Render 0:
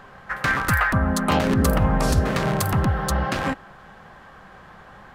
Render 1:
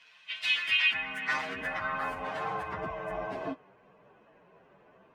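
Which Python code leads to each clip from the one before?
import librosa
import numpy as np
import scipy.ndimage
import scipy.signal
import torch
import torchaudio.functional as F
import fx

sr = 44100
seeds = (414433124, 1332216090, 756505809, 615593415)

y = fx.partial_stretch(x, sr, pct=126)
y = fx.filter_sweep_bandpass(y, sr, from_hz=3600.0, to_hz=450.0, start_s=0.4, end_s=3.72, q=1.6)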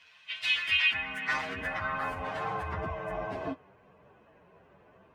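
y = fx.peak_eq(x, sr, hz=79.0, db=14.0, octaves=0.84)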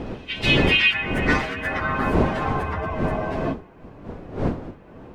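y = fx.dmg_wind(x, sr, seeds[0], corner_hz=370.0, level_db=-34.0)
y = y * 10.0 ** (7.5 / 20.0)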